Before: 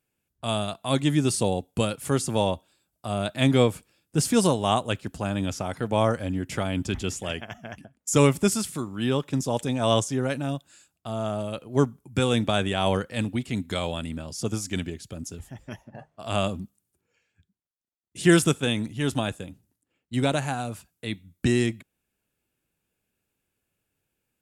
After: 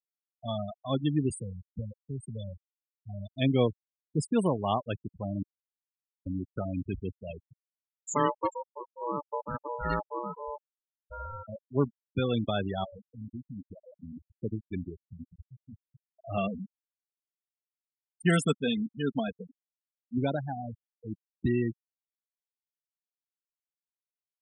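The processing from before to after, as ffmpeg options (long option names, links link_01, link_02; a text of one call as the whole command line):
ffmpeg -i in.wav -filter_complex "[0:a]asettb=1/sr,asplit=3[link_01][link_02][link_03];[link_01]atrim=end=1.304[link_04];[link_02]atrim=start=1.3:end=3.36,asetpts=PTS-STARTPTS,afade=type=in:duration=0.004:curve=qsin,afade=type=out:start_time=2.056:duration=0.004:curve=qsin,acrossover=split=140|3000[link_05][link_06][link_07];[link_06]acompressor=threshold=-36dB:ratio=3:attack=3.2:release=140:knee=2.83:detection=peak[link_08];[link_05][link_08][link_07]amix=inputs=3:normalize=0[link_09];[link_03]atrim=start=3.356[link_10];[link_04][link_09]acrossfade=duration=0.004:curve1=hsin:curve2=qsin[link_11];[link_11][link_10]acrossfade=duration=0.004:curve1=qsin:curve2=hsin,asplit=3[link_12][link_13][link_14];[link_12]afade=type=out:start_time=8.14:duration=0.02[link_15];[link_13]aeval=exprs='val(0)*sin(2*PI*730*n/s)':channel_layout=same,afade=type=in:start_time=8.14:duration=0.02,afade=type=out:start_time=11.47:duration=0.02[link_16];[link_14]afade=type=in:start_time=11.47:duration=0.02[link_17];[link_15][link_16][link_17]amix=inputs=3:normalize=0,asettb=1/sr,asplit=3[link_18][link_19][link_20];[link_18]atrim=end=12.844[link_21];[link_19]atrim=start=12.84:end=14.37,asetpts=PTS-STARTPTS,afade=type=in:duration=0.004:curve=qsin,afade=type=out:start_time=1.526:duration=0.004:curve=qsin,acompressor=threshold=-30dB:ratio=5:attack=3.2:release=140:knee=1:detection=peak[link_22];[link_20]atrim=start=14.366[link_23];[link_21][link_22]acrossfade=duration=0.004:curve1=hsin:curve2=qsin[link_24];[link_24][link_23]acrossfade=duration=0.004:curve1=qsin:curve2=hsin,asettb=1/sr,asplit=3[link_25][link_26][link_27];[link_25]atrim=end=16.374[link_28];[link_26]atrim=start=16.37:end=20.18,asetpts=PTS-STARTPTS,afade=type=in:duration=0.004:curve=qsin,afade=type=out:start_time=3.806:duration=0.004:curve=qsin,aecho=1:1:4.4:0.65,atrim=end_sample=168021[link_29];[link_27]atrim=start=20.176[link_30];[link_28][link_29]acrossfade=duration=0.004:curve1=hsin:curve2=qsin[link_31];[link_31][link_30]acrossfade=duration=0.004:curve1=qsin:curve2=hsin,asplit=3[link_32][link_33][link_34];[link_32]atrim=end=5.43,asetpts=PTS-STARTPTS,afade=type=out:start_time=5.426:duration=0.004:curve=hsin[link_35];[link_33]atrim=start=5.43:end=6.26,asetpts=PTS-STARTPTS,volume=0[link_36];[link_34]atrim=start=6.26,asetpts=PTS-STARTPTS,afade=type=in:duration=0.004:curve=hsin[link_37];[link_35][link_36][link_37]concat=n=3:v=0:a=1,afftfilt=real='re*gte(hypot(re,im),0.112)':imag='im*gte(hypot(re,im),0.112)':win_size=1024:overlap=0.75,volume=-5dB" out.wav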